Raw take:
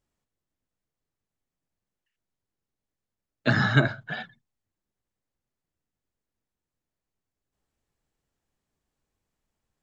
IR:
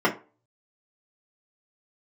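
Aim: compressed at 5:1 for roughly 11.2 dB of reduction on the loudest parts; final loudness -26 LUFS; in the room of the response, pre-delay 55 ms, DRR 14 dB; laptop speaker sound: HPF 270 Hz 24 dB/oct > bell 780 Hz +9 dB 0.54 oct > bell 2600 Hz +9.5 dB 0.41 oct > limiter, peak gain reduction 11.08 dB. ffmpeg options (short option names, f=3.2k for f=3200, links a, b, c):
-filter_complex "[0:a]acompressor=threshold=-27dB:ratio=5,asplit=2[a][b];[1:a]atrim=start_sample=2205,adelay=55[c];[b][c]afir=irnorm=-1:irlink=0,volume=-30.5dB[d];[a][d]amix=inputs=2:normalize=0,highpass=f=270:w=0.5412,highpass=f=270:w=1.3066,equalizer=f=780:t=o:w=0.54:g=9,equalizer=f=2.6k:t=o:w=0.41:g=9.5,volume=8.5dB,alimiter=limit=-14dB:level=0:latency=1"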